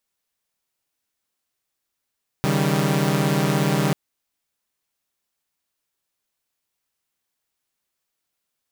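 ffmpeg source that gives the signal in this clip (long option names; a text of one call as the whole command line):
ffmpeg -f lavfi -i "aevalsrc='0.1*((2*mod(138.59*t,1)-1)+(2*mod(155.56*t,1)-1)+(2*mod(196*t,1)-1))':duration=1.49:sample_rate=44100" out.wav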